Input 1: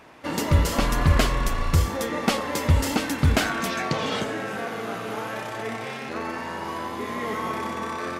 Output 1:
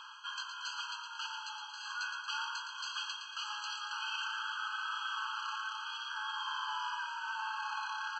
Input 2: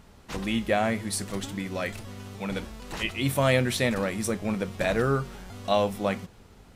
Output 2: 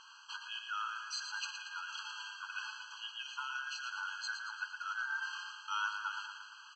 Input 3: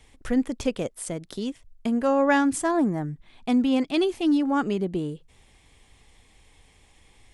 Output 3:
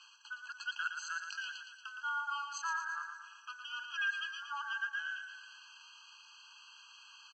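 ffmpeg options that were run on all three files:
ffmpeg -i in.wav -filter_complex "[0:a]afftfilt=real='real(if(between(b,1,1012),(2*floor((b-1)/92)+1)*92-b,b),0)':imag='imag(if(between(b,1,1012),(2*floor((b-1)/92)+1)*92-b,b),0)*if(between(b,1,1012),-1,1)':win_size=2048:overlap=0.75,equalizer=frequency=3700:width=2:gain=15,areverse,acompressor=threshold=-33dB:ratio=12,areverse,acrusher=bits=8:mix=0:aa=0.5,aresample=16000,aresample=44100,asplit=2[link_01][link_02];[link_02]aecho=0:1:115|230|345|460|575|690|805:0.447|0.25|0.14|0.0784|0.0439|0.0246|0.0138[link_03];[link_01][link_03]amix=inputs=2:normalize=0,afftfilt=real='re*eq(mod(floor(b*sr/1024/820),2),1)':imag='im*eq(mod(floor(b*sr/1024/820),2),1)':win_size=1024:overlap=0.75,volume=1dB" out.wav

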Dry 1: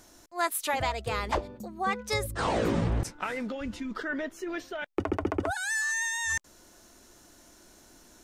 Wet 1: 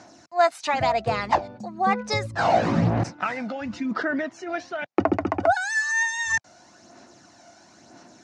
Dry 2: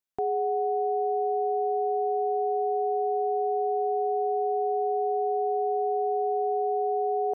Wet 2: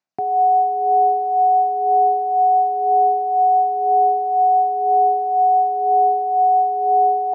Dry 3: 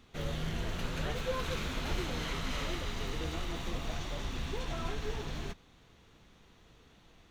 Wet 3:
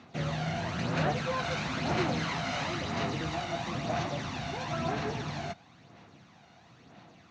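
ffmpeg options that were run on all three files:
ffmpeg -i in.wav -af "aphaser=in_gain=1:out_gain=1:delay=1.4:decay=0.43:speed=1:type=sinusoidal,highpass=frequency=110:width=0.5412,highpass=frequency=110:width=1.3066,equalizer=frequency=430:width_type=q:width=4:gain=-7,equalizer=frequency=710:width_type=q:width=4:gain=7,equalizer=frequency=3300:width_type=q:width=4:gain=-7,lowpass=frequency=6100:width=0.5412,lowpass=frequency=6100:width=1.3066,volume=5dB" out.wav

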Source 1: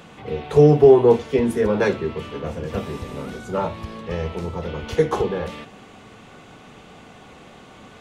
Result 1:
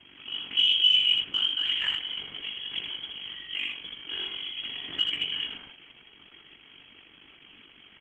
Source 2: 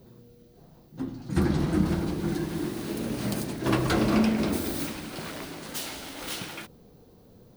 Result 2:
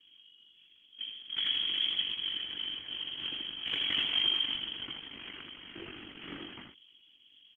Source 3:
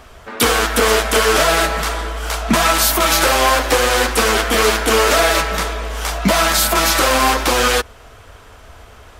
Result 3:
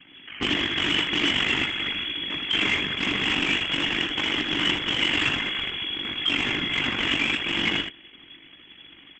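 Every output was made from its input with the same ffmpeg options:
ffmpeg -i in.wav -filter_complex "[0:a]aeval=exprs='val(0)*sin(2*PI*24*n/s)':channel_layout=same,lowpass=frequency=2900:width_type=q:width=0.5098,lowpass=frequency=2900:width_type=q:width=0.6013,lowpass=frequency=2900:width_type=q:width=0.9,lowpass=frequency=2900:width_type=q:width=2.563,afreqshift=-3400,lowshelf=frequency=420:width_type=q:width=3:gain=10.5,asoftclip=type=tanh:threshold=-10.5dB,highpass=42,asplit=2[link_01][link_02];[link_02]aecho=0:1:21|78:0.282|0.596[link_03];[link_01][link_03]amix=inputs=2:normalize=0,volume=-5dB" -ar 48000 -c:a libopus -b:a 10k out.opus

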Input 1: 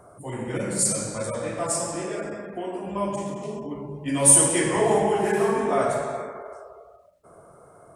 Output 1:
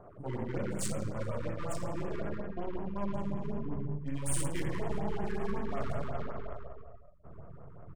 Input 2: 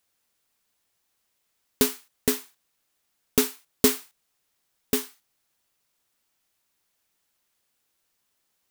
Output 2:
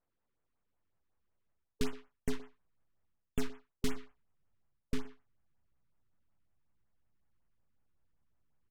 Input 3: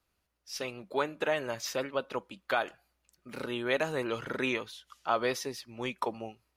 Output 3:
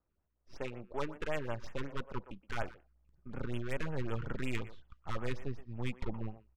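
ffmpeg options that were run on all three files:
ffmpeg -i in.wav -filter_complex "[0:a]aeval=exprs='if(lt(val(0),0),0.447*val(0),val(0))':channel_layout=same,adynamicsmooth=sensitivity=4:basefreq=1300,asubboost=boost=5:cutoff=160,areverse,acompressor=threshold=-31dB:ratio=4,areverse,asplit=2[link_01][link_02];[link_02]adelay=120,highpass=300,lowpass=3400,asoftclip=type=hard:threshold=-29dB,volume=-15dB[link_03];[link_01][link_03]amix=inputs=2:normalize=0,afftfilt=real='re*(1-between(b*sr/1024,600*pow(5000/600,0.5+0.5*sin(2*PI*5.4*pts/sr))/1.41,600*pow(5000/600,0.5+0.5*sin(2*PI*5.4*pts/sr))*1.41))':imag='im*(1-between(b*sr/1024,600*pow(5000/600,0.5+0.5*sin(2*PI*5.4*pts/sr))/1.41,600*pow(5000/600,0.5+0.5*sin(2*PI*5.4*pts/sr))*1.41))':win_size=1024:overlap=0.75,volume=1dB" out.wav

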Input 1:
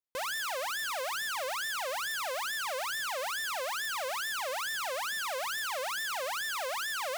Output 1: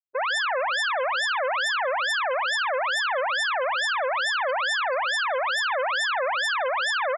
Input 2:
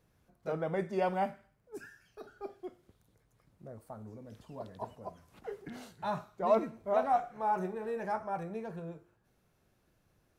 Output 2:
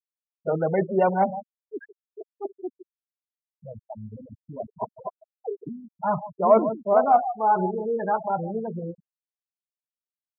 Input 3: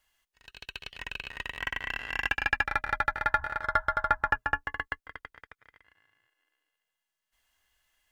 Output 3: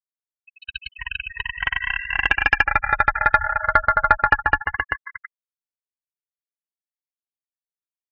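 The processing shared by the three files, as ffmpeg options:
ffmpeg -i in.wav -filter_complex "[0:a]asplit=2[link_01][link_02];[link_02]adelay=151.6,volume=-12dB,highshelf=frequency=4000:gain=-3.41[link_03];[link_01][link_03]amix=inputs=2:normalize=0,afftfilt=real='re*gte(hypot(re,im),0.0282)':imag='im*gte(hypot(re,im),0.0282)':win_size=1024:overlap=0.75,acontrast=64,volume=4dB" out.wav

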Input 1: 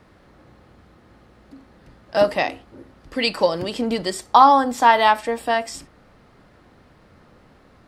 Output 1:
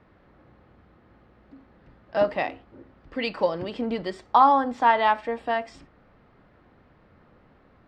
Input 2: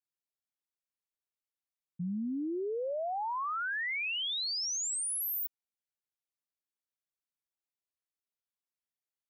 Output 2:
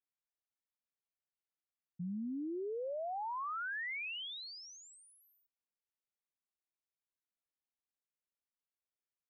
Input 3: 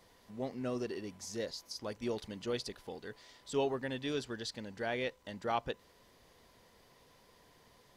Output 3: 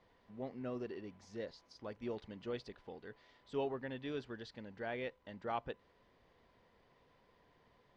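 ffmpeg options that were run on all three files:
ffmpeg -i in.wav -af "lowpass=2800,volume=-5dB" out.wav

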